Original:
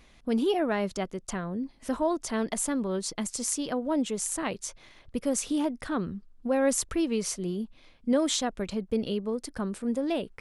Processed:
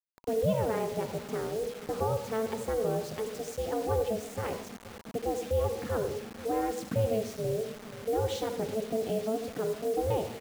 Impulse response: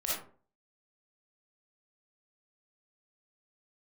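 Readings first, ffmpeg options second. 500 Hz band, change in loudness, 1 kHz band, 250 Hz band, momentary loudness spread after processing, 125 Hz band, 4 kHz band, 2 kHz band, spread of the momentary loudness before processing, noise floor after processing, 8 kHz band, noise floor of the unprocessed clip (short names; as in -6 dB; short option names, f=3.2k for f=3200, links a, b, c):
+1.5 dB, -2.5 dB, +0.5 dB, -8.5 dB, 6 LU, +5.5 dB, -7.5 dB, -5.5 dB, 9 LU, -47 dBFS, -13.0 dB, -58 dBFS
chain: -filter_complex "[0:a]lowpass=10k,lowshelf=f=360:g=8,adynamicsmooth=sensitivity=7:basefreq=4.8k,highshelf=f=2.9k:g=-9,alimiter=limit=-17dB:level=0:latency=1:release=180,aeval=exprs='val(0)*sin(2*PI*220*n/s)':c=same,highpass=f=82:w=0.5412,highpass=f=82:w=1.3066,asplit=2[a][b];[b]adelay=482,lowpass=f=2.1k:p=1,volume=-16.5dB,asplit=2[c][d];[d]adelay=482,lowpass=f=2.1k:p=1,volume=0.46,asplit=2[e][f];[f]adelay=482,lowpass=f=2.1k:p=1,volume=0.46,asplit=2[g][h];[h]adelay=482,lowpass=f=2.1k:p=1,volume=0.46[i];[a][c][e][g][i]amix=inputs=5:normalize=0,asplit=2[j][k];[1:a]atrim=start_sample=2205,asetrate=33957,aresample=44100,lowpass=5.2k[l];[k][l]afir=irnorm=-1:irlink=0,volume=-13dB[m];[j][m]amix=inputs=2:normalize=0,acrusher=bits=6:mix=0:aa=0.000001,bandreject=f=960:w=23,volume=-2.5dB"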